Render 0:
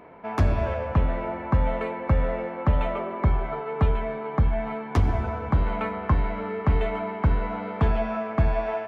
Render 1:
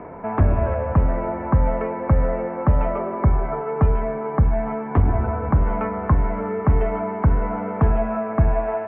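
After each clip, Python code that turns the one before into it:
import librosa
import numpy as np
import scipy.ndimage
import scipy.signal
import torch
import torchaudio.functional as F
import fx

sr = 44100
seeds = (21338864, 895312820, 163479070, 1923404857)

y = scipy.signal.sosfilt(scipy.signal.bessel(8, 1400.0, 'lowpass', norm='mag', fs=sr, output='sos'), x)
y = fx.band_squash(y, sr, depth_pct=40)
y = F.gain(torch.from_numpy(y), 4.5).numpy()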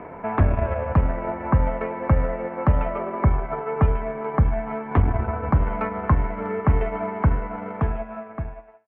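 y = fx.fade_out_tail(x, sr, length_s=1.67)
y = fx.high_shelf(y, sr, hz=2100.0, db=11.0)
y = fx.transient(y, sr, attack_db=1, sustain_db=-8)
y = F.gain(torch.from_numpy(y), -2.0).numpy()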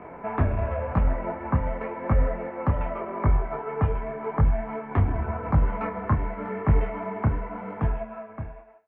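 y = fx.detune_double(x, sr, cents=31)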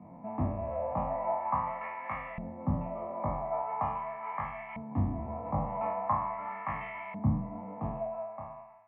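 y = fx.spec_trails(x, sr, decay_s=0.79)
y = fx.filter_lfo_bandpass(y, sr, shape='saw_up', hz=0.42, low_hz=200.0, high_hz=2500.0, q=1.5)
y = fx.fixed_phaser(y, sr, hz=1500.0, stages=6)
y = F.gain(torch.from_numpy(y), 2.0).numpy()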